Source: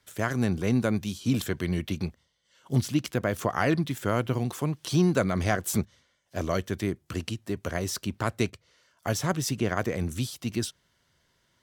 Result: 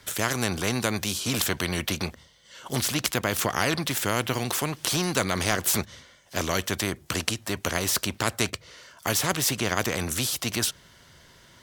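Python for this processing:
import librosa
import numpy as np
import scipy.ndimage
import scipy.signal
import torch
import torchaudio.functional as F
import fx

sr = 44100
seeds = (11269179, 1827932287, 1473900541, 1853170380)

y = fx.spectral_comp(x, sr, ratio=2.0)
y = y * 10.0 ** (7.0 / 20.0)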